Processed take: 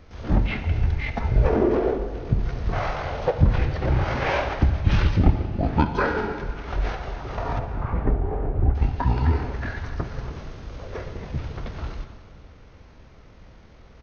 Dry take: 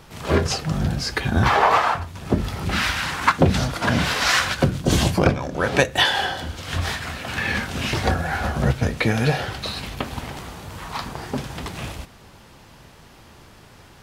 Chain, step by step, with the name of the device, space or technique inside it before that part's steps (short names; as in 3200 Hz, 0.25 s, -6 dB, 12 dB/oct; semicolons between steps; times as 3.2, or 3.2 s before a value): 7.59–8.76 LPF 3100 Hz 12 dB/oct; monster voice (pitch shift -10.5 st; formant shift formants -4.5 st; low shelf 150 Hz +7 dB; reverb RT60 2.0 s, pre-delay 49 ms, DRR 8 dB); gain -4.5 dB